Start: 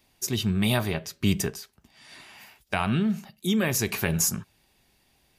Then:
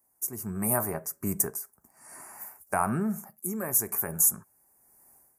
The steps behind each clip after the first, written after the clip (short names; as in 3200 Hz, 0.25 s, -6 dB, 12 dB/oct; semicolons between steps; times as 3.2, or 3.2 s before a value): Chebyshev band-stop 1100–9400 Hz, order 2; tilt +3 dB/oct; AGC gain up to 15 dB; gain -8 dB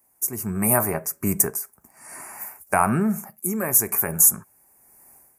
bell 2400 Hz +6.5 dB 0.58 oct; gain +7 dB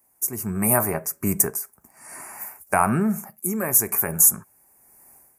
nothing audible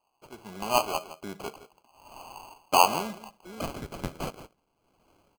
echo 0.165 s -14.5 dB; band-pass sweep 840 Hz -> 5900 Hz, 3.12–5.36; sample-and-hold 24×; gain +2.5 dB